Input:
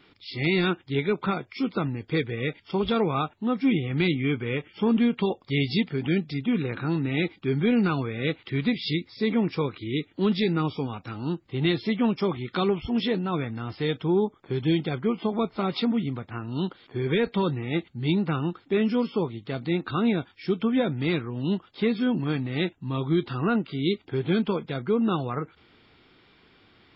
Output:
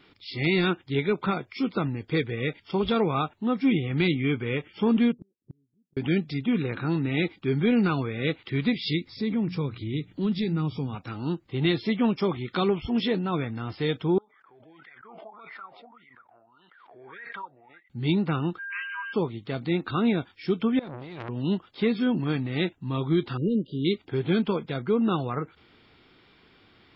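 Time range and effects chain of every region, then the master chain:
5.12–5.97 inverse Chebyshev low-pass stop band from 2100 Hz, stop band 80 dB + low shelf 120 Hz -8.5 dB + flipped gate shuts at -31 dBFS, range -42 dB
9.07–10.95 tone controls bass +11 dB, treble +3 dB + notches 60/120/180 Hz + compressor 1.5:1, threshold -38 dBFS
14.18–17.9 wah 1.7 Hz 610–2000 Hz, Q 20 + backwards sustainer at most 31 dB/s
18.58–19.12 whine 1600 Hz -33 dBFS + brick-wall FIR band-pass 940–3100 Hz
20.79–21.29 negative-ratio compressor -34 dBFS + core saturation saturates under 1500 Hz
23.37–23.85 brick-wall FIR band-stop 610–2800 Hz + high shelf 2400 Hz -10.5 dB
whole clip: dry

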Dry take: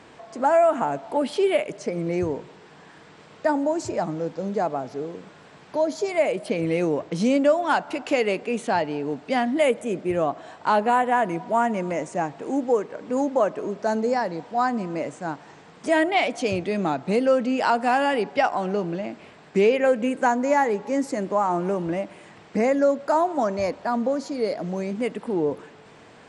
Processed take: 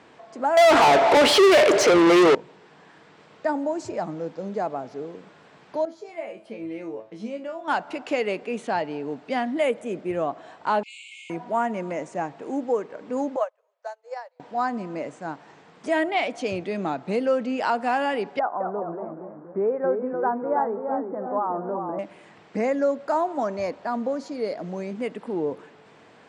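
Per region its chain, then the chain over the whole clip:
0.57–2.35 HPF 46 Hz + resonant low shelf 250 Hz -11.5 dB, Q 3 + overdrive pedal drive 37 dB, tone 7900 Hz, clips at -6 dBFS
5.85–7.68 high shelf 4400 Hz -7 dB + resonator 110 Hz, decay 0.27 s, mix 90%
10.83–11.3 brick-wall FIR band-pass 2100–9100 Hz + flutter echo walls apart 10.4 m, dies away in 1.1 s + fast leveller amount 50%
13.36–14.4 steep high-pass 480 Hz 96 dB/oct + upward expander 2.5:1, over -37 dBFS
18.39–21.99 steep low-pass 1400 Hz + low shelf 240 Hz -9.5 dB + echoes that change speed 0.212 s, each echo -1 st, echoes 3, each echo -6 dB
whole clip: HPF 140 Hz 6 dB/oct; high shelf 8100 Hz -10 dB; gain -2.5 dB

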